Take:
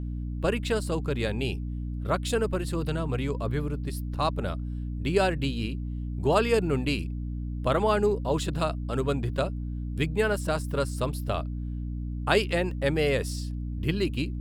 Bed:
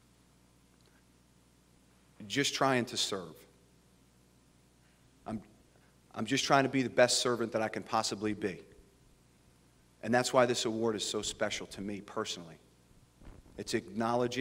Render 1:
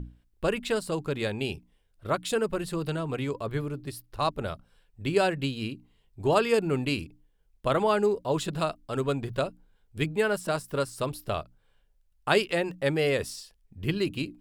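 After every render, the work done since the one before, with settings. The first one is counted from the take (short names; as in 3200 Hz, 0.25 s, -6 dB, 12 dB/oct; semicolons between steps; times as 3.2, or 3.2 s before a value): notches 60/120/180/240/300 Hz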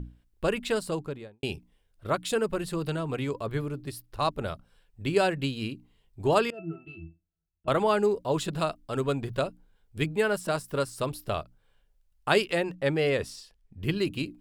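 0.84–1.43 studio fade out; 6.5–7.68 octave resonator E, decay 0.21 s; 12.63–13.83 high shelf 7300 Hz -9.5 dB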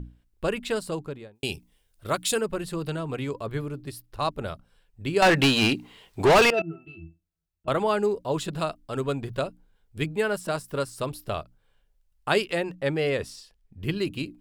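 1.35–2.41 high shelf 3500 Hz +11.5 dB; 5.22–6.62 overdrive pedal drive 29 dB, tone 5300 Hz, clips at -10 dBFS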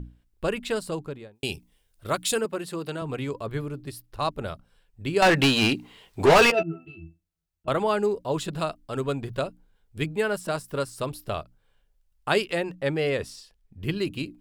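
2.45–3.02 HPF 200 Hz; 6.21–6.91 doubler 12 ms -6 dB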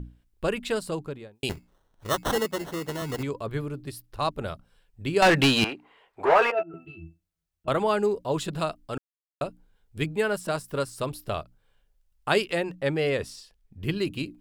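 1.49–3.23 sample-rate reducer 2400 Hz; 5.64–6.74 three-band isolator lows -20 dB, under 440 Hz, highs -20 dB, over 2100 Hz; 8.98–9.41 mute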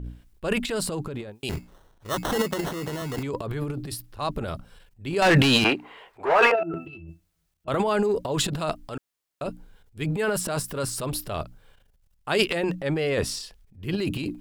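transient shaper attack -4 dB, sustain +12 dB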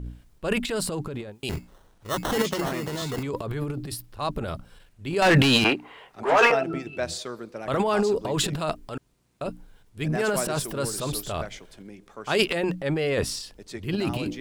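add bed -4.5 dB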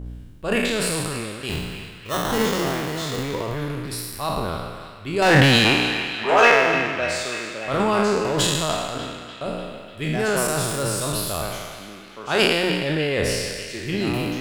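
spectral trails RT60 1.42 s; on a send: narrowing echo 0.297 s, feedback 70%, band-pass 2300 Hz, level -9.5 dB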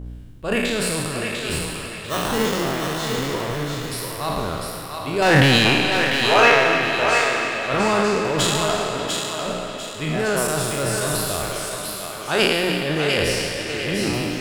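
thinning echo 0.697 s, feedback 36%, high-pass 600 Hz, level -4 dB; digital reverb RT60 4.7 s, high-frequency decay 0.85×, pre-delay 95 ms, DRR 10.5 dB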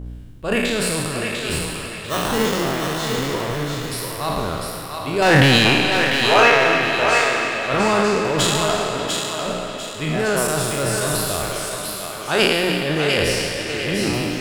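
gain +1.5 dB; limiter -2 dBFS, peak gain reduction 2 dB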